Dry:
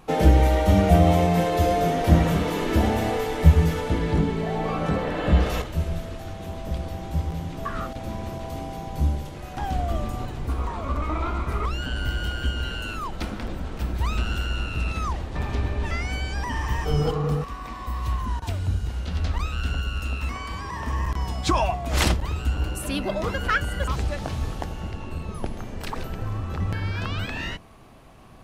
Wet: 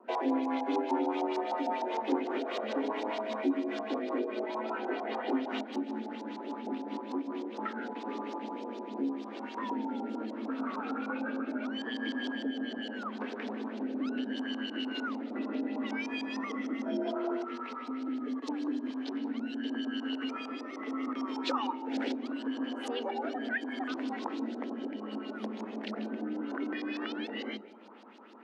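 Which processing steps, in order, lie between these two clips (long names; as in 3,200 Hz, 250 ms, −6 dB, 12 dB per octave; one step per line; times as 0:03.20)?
auto-filter low-pass saw up 6.6 Hz 590–5,500 Hz
rotating-speaker cabinet horn 5 Hz, later 0.75 Hz, at 0:07.19
downward compressor 2 to 1, threshold −30 dBFS, peak gain reduction 12 dB
on a send at −20 dB: convolution reverb RT60 0.50 s, pre-delay 151 ms
on the sum: frequency shifter +200 Hz
level −4.5 dB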